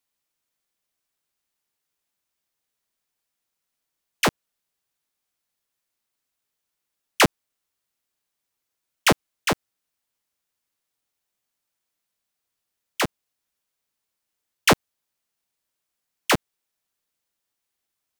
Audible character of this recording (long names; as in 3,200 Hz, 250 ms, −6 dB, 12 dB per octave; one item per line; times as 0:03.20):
background noise floor −82 dBFS
spectral slope −4.0 dB per octave